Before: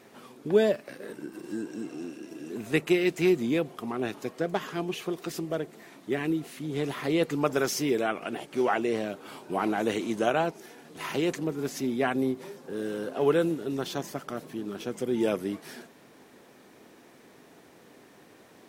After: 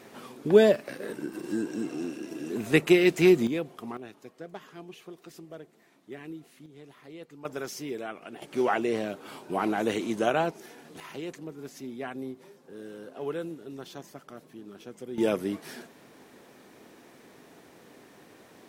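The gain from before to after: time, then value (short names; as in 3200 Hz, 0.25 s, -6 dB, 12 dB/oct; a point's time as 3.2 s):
+4 dB
from 3.47 s -4 dB
from 3.97 s -13 dB
from 6.66 s -19.5 dB
from 7.45 s -9 dB
from 8.42 s 0 dB
from 11 s -10 dB
from 15.18 s +1 dB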